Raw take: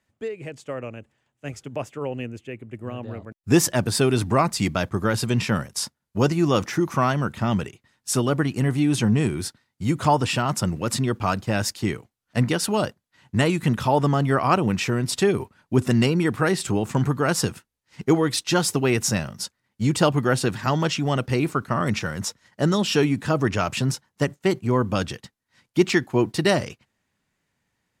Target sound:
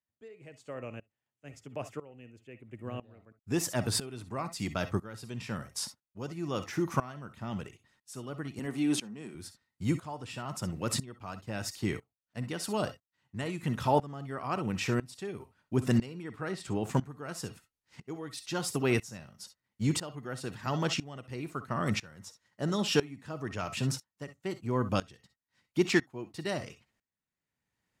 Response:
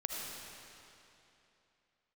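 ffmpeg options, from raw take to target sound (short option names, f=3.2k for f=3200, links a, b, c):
-filter_complex "[0:a]asettb=1/sr,asplit=3[a][b][c];[a]atrim=end=8.594[d];[b]atrim=start=8.59:end=9.35,asetpts=PTS-STARTPTS,afade=t=in:d=0.004:c=qsin,afade=t=out:st=0.756:d=0.004:c=qsin,highpass=f=180:w=0.5412,highpass=f=180:w=1.3066[e];[c]atrim=start=9.346[f];[d][e]acrossfade=d=0.004:c1=hsin:c2=qsin[g];[g][f]acrossfade=d=0.004:c1=qsin:c2=hsin,asettb=1/sr,asplit=3[h][i][j];[h]atrim=end=16.224[k];[i]atrim=start=16.22:end=16.83,asetpts=PTS-STARTPTS,afade=t=in:d=0.004:c=qsin,afade=t=out:st=0.606:d=0.004:c=qsin,highshelf=f=7.7k:g=-10.5[l];[j]atrim=start=16.826[m];[k][l]acrossfade=d=0.004:c1=hsin:c2=qsin[n];[n][m]acrossfade=d=0.004:c1=qsin:c2=hsin[o];[1:a]atrim=start_sample=2205,atrim=end_sample=3087[p];[o][p]afir=irnorm=-1:irlink=0,aeval=exprs='val(0)*pow(10,-20*if(lt(mod(-1*n/s,1),2*abs(-1)/1000),1-mod(-1*n/s,1)/(2*abs(-1)/1000),(mod(-1*n/s,1)-2*abs(-1)/1000)/(1-2*abs(-1)/1000))/20)':c=same,volume=-3dB"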